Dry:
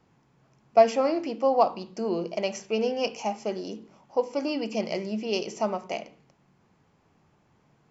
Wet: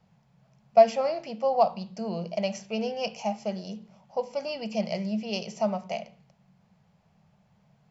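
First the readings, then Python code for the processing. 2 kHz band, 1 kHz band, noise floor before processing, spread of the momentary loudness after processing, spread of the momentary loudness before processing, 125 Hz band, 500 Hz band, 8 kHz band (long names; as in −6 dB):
−2.5 dB, −0.5 dB, −66 dBFS, 14 LU, 12 LU, +4.0 dB, −1.0 dB, can't be measured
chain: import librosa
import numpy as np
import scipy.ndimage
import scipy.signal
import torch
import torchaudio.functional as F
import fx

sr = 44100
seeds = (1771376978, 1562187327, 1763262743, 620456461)

y = fx.curve_eq(x, sr, hz=(110.0, 200.0, 290.0, 630.0, 1100.0, 4400.0, 6500.0), db=(0, 6, -19, 2, -6, 0, -4))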